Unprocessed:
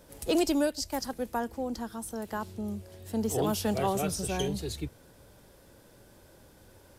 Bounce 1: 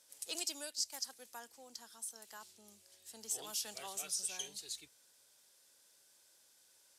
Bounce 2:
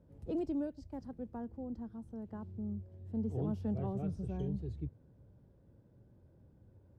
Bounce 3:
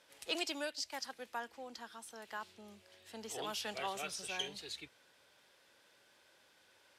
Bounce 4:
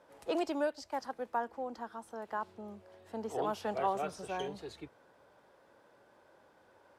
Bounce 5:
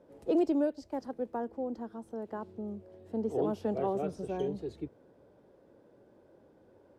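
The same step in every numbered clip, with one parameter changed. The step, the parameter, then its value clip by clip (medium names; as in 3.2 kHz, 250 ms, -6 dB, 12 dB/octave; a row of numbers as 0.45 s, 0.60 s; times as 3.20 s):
band-pass filter, frequency: 7 kHz, 110 Hz, 2.7 kHz, 1 kHz, 400 Hz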